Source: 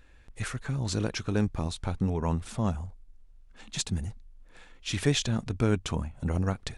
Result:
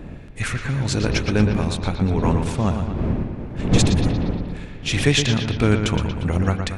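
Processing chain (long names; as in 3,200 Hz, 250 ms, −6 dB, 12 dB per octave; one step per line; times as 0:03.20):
wind on the microphone 210 Hz −33 dBFS
parametric band 2,300 Hz +5.5 dB 0.84 octaves
bucket-brigade delay 117 ms, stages 4,096, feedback 59%, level −7 dB
level +7 dB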